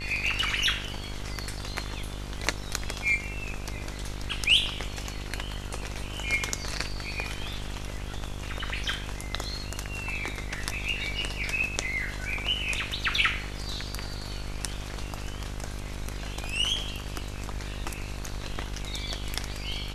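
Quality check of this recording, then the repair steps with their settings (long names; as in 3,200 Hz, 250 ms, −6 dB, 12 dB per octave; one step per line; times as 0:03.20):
mains buzz 50 Hz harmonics 32 −37 dBFS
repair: hum removal 50 Hz, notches 32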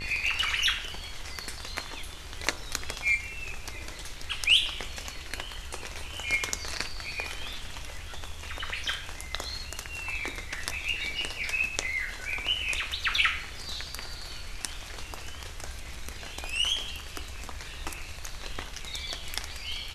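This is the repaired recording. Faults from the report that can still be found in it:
none of them is left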